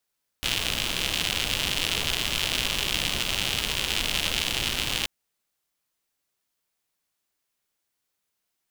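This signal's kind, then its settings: rain from filtered ticks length 4.63 s, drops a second 140, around 3000 Hz, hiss -4.5 dB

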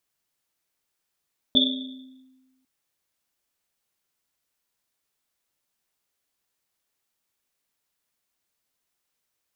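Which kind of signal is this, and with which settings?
Risset drum, pitch 260 Hz, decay 1.37 s, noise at 3500 Hz, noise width 240 Hz, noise 55%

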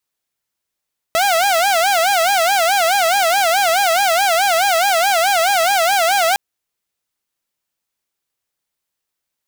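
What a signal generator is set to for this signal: siren wail 649–814 Hz 4.7/s saw -10 dBFS 5.21 s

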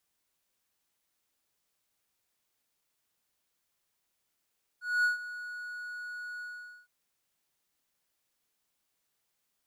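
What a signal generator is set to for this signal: ADSR triangle 1460 Hz, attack 0.231 s, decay 0.132 s, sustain -15.5 dB, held 1.60 s, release 0.463 s -20.5 dBFS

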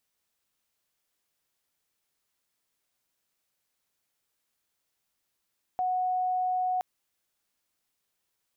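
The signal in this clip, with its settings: tone sine 736 Hz -25 dBFS 1.02 s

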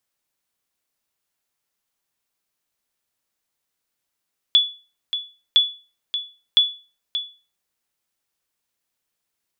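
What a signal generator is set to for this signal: sonar ping 3430 Hz, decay 0.34 s, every 1.01 s, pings 3, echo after 0.58 s, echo -10.5 dB -7 dBFS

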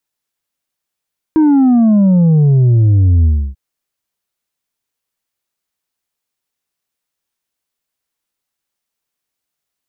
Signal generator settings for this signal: sub drop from 320 Hz, over 2.19 s, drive 4 dB, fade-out 0.30 s, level -7 dB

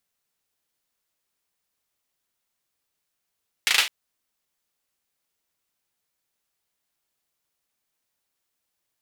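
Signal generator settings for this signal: hand clap length 0.21 s, apart 37 ms, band 2600 Hz, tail 0.29 s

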